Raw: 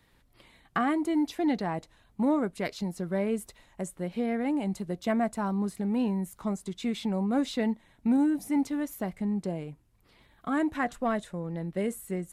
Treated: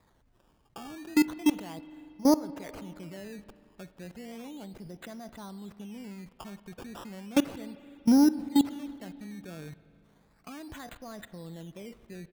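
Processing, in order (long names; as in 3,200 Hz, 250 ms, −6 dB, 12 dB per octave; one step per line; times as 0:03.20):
output level in coarse steps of 24 dB
downsampling to 11,025 Hz
sample-and-hold swept by an LFO 15×, swing 100% 0.34 Hz
spring reverb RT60 2.5 s, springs 39/49 ms, chirp 20 ms, DRR 15 dB
level +5.5 dB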